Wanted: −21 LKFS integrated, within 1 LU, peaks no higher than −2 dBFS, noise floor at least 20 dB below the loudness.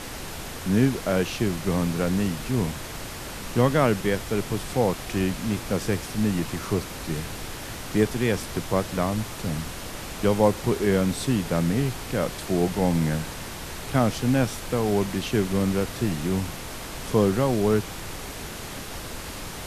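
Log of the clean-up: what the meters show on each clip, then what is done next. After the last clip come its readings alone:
background noise floor −36 dBFS; target noise floor −46 dBFS; integrated loudness −26.0 LKFS; sample peak −6.5 dBFS; target loudness −21.0 LKFS
→ noise reduction from a noise print 10 dB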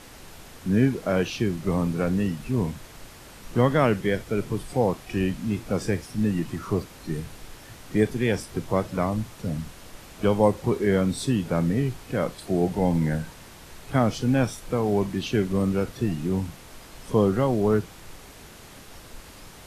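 background noise floor −46 dBFS; integrated loudness −25.5 LKFS; sample peak −7.0 dBFS; target loudness −21.0 LKFS
→ level +4.5 dB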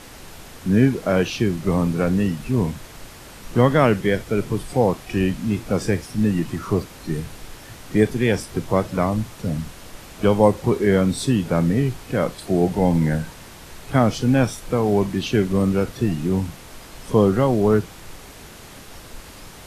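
integrated loudness −21.0 LKFS; sample peak −2.5 dBFS; background noise floor −42 dBFS

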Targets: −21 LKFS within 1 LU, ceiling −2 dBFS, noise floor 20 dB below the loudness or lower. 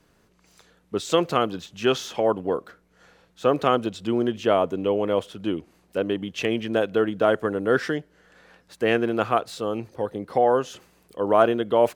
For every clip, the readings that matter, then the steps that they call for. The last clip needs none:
integrated loudness −24.0 LKFS; sample peak −3.5 dBFS; target loudness −21.0 LKFS
→ level +3 dB
brickwall limiter −2 dBFS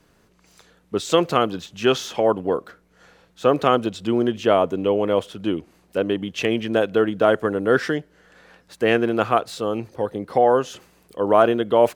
integrated loudness −21.5 LKFS; sample peak −2.0 dBFS; background noise floor −60 dBFS

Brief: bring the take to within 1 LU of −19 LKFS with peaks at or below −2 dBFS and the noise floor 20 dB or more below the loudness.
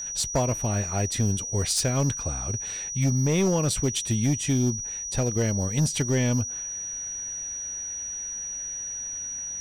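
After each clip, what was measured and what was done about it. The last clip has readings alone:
share of clipped samples 1.2%; peaks flattened at −17.5 dBFS; interfering tone 5,800 Hz; level of the tone −31 dBFS; integrated loudness −26.5 LKFS; sample peak −17.5 dBFS; target loudness −19.0 LKFS
→ clipped peaks rebuilt −17.5 dBFS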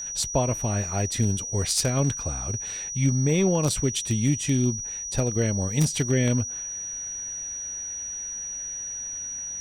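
share of clipped samples 0.0%; interfering tone 5,800 Hz; level of the tone −31 dBFS
→ notch filter 5,800 Hz, Q 30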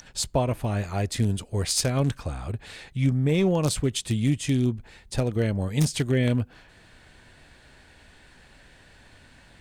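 interfering tone none found; integrated loudness −26.0 LKFS; sample peak −8.0 dBFS; target loudness −19.0 LKFS
→ level +7 dB
brickwall limiter −2 dBFS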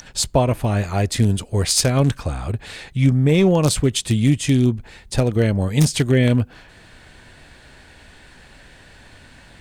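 integrated loudness −19.0 LKFS; sample peak −2.0 dBFS; background noise floor −47 dBFS

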